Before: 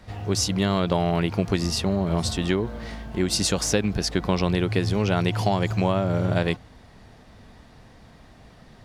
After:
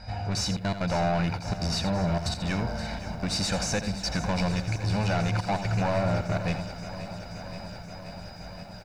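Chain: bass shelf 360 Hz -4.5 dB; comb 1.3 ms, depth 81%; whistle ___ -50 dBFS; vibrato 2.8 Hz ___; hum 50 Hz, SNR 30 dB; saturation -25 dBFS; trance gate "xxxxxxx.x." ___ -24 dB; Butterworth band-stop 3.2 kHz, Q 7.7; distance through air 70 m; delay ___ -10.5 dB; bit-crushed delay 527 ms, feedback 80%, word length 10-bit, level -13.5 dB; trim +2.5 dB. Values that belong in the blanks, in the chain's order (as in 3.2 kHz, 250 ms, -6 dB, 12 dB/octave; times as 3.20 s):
4.9 kHz, 15 cents, 186 bpm, 83 ms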